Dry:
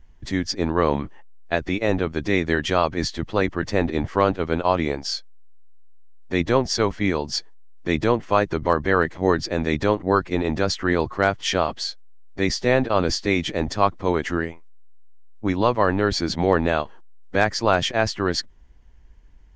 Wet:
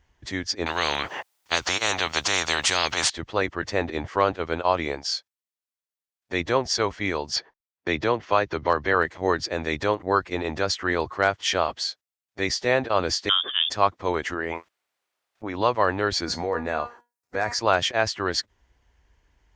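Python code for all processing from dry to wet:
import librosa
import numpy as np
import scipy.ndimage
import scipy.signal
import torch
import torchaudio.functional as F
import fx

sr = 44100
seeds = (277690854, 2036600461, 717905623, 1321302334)

y = fx.chain(x, sr, fx.peak_eq(hz=780.0, db=6.5, octaves=0.57),
    fx.spectral_comp(ratio=4.0), at=(0.66, 3.1))
y = fx.chain(y, sr, fx.lowpass(hz=6100.0, slope=24),
    fx.gate_hold(open_db=-26.0, close_db=-38.0, hold_ms=71.0, range_db=-21, attack_ms=1.4, release_ms=100.0),
    fx.band_squash(depth_pct=40), at=(7.36, 8.94))
y = fx.chain(y, sr, fx.freq_invert(carrier_hz=3500),
    fx.highpass(hz=670.0, slope=6),
    fx.peak_eq(hz=950.0, db=-10.5, octaves=0.26), at=(13.29, 13.7))
y = fx.chain(y, sr, fx.lowpass(hz=1400.0, slope=6),
    fx.low_shelf(hz=220.0, db=-11.0),
    fx.env_flatten(amount_pct=100), at=(14.34, 15.56))
y = fx.chain(y, sr, fx.peak_eq(hz=3200.0, db=-12.5, octaves=0.49),
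    fx.comb_fb(f0_hz=240.0, decay_s=0.24, harmonics='all', damping=0.0, mix_pct=70),
    fx.env_flatten(amount_pct=70), at=(16.25, 17.59))
y = scipy.signal.sosfilt(scipy.signal.butter(2, 81.0, 'highpass', fs=sr, output='sos'), y)
y = fx.peak_eq(y, sr, hz=190.0, db=-10.5, octaves=1.8)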